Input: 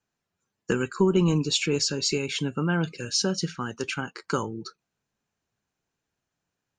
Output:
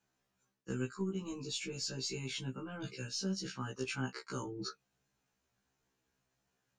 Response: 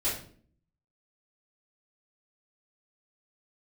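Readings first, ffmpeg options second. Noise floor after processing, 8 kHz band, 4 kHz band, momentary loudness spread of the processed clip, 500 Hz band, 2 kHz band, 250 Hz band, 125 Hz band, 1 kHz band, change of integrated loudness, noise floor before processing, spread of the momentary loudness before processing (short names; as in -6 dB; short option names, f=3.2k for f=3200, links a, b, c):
-83 dBFS, -12.5 dB, -12.5 dB, 6 LU, -15.5 dB, -13.0 dB, -13.5 dB, -13.0 dB, -13.5 dB, -13.5 dB, -84 dBFS, 10 LU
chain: -filter_complex "[0:a]acrossover=split=310|3900[a][b][c];[a]acompressor=threshold=-26dB:ratio=4[d];[b]acompressor=threshold=-34dB:ratio=4[e];[c]acompressor=threshold=-28dB:ratio=4[f];[d][e][f]amix=inputs=3:normalize=0,aeval=exprs='0.178*(cos(1*acos(clip(val(0)/0.178,-1,1)))-cos(1*PI/2))+0.00158*(cos(6*acos(clip(val(0)/0.178,-1,1)))-cos(6*PI/2))':c=same,areverse,acompressor=threshold=-37dB:ratio=8,areverse,afftfilt=real='re*1.73*eq(mod(b,3),0)':imag='im*1.73*eq(mod(b,3),0)':win_size=2048:overlap=0.75,volume=3.5dB"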